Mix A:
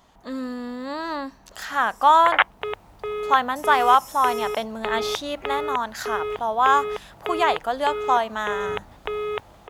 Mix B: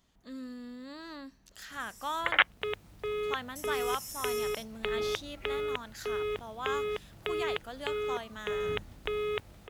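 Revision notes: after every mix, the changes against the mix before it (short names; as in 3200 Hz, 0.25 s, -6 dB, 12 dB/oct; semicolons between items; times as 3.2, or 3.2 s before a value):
speech -9.5 dB; master: add bell 850 Hz -13 dB 1.5 oct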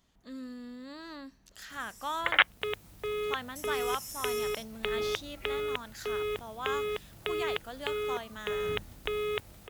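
second sound: remove LPF 3900 Hz 6 dB/oct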